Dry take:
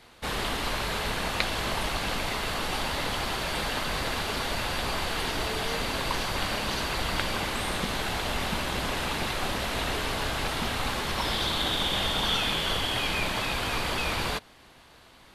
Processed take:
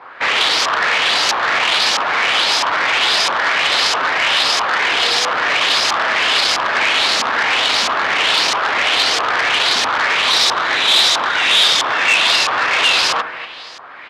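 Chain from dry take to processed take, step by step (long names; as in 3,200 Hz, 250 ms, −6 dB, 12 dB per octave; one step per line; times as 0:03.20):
parametric band 190 Hz −4.5 dB 0.98 octaves
in parallel at −3.5 dB: sine wavefolder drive 18 dB, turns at −7 dBFS
on the sum: repeating echo 259 ms, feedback 34%, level −14.5 dB
on a send at −14.5 dB: convolution reverb RT60 0.45 s, pre-delay 57 ms
on the sum: auto-filter low-pass saw up 1.4 Hz 990–6,000 Hz
meter weighting curve A
wrong playback speed 44.1 kHz file played as 48 kHz
saturating transformer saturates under 3,100 Hz
level −3 dB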